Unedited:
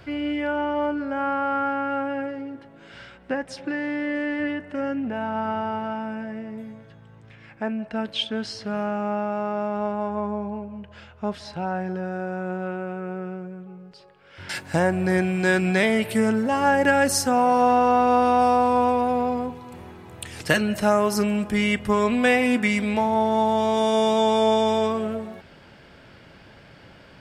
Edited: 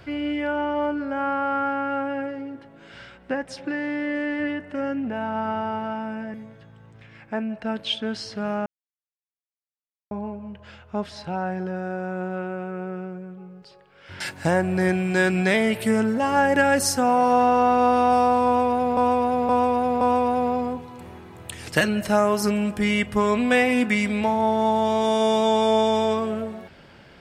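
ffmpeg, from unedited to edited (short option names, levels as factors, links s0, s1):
-filter_complex "[0:a]asplit=7[s0][s1][s2][s3][s4][s5][s6];[s0]atrim=end=6.342[s7];[s1]atrim=start=6.628:end=8.95,asetpts=PTS-STARTPTS,afade=t=out:st=2.318:d=0.004:c=hsin[s8];[s2]atrim=start=8.95:end=10.4,asetpts=PTS-STARTPTS,volume=0[s9];[s3]atrim=start=10.4:end=19.262,asetpts=PTS-STARTPTS,afade=t=in:d=0.004:c=hsin[s10];[s4]atrim=start=18.738:end=19.262[s11];[s5]atrim=start=18.738:end=19.262[s12];[s6]atrim=start=18.738[s13];[s8][s9][s10]concat=n=3:v=0:a=1[s14];[s7][s14]acrossfade=d=0.004:c1=hsin:c2=hsin[s15];[s15][s11]acrossfade=d=0.004:c1=hsin:c2=hsin[s16];[s16][s12]acrossfade=d=0.004:c1=hsin:c2=hsin[s17];[s17][s13]acrossfade=d=0.004:c1=hsin:c2=hsin"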